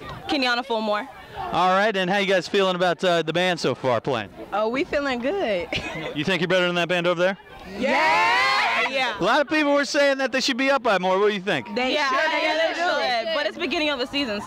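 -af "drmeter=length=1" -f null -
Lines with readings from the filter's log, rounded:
Channel 1: DR: 6.2
Overall DR: 6.2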